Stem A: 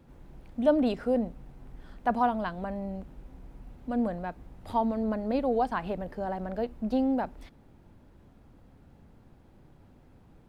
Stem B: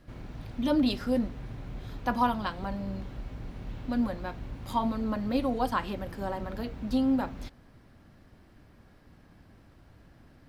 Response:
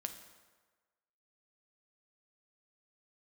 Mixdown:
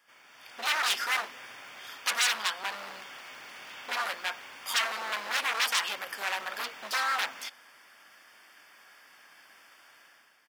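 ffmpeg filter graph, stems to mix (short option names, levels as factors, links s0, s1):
-filter_complex "[0:a]volume=1.06[s0];[1:a]dynaudnorm=f=210:g=5:m=3.98,adelay=0.9,volume=1.06,asplit=2[s1][s2];[s2]volume=0.224[s3];[2:a]atrim=start_sample=2205[s4];[s3][s4]afir=irnorm=-1:irlink=0[s5];[s0][s1][s5]amix=inputs=3:normalize=0,asuperstop=centerf=4000:order=8:qfactor=6.8,aeval=exprs='0.133*(abs(mod(val(0)/0.133+3,4)-2)-1)':c=same,highpass=1500"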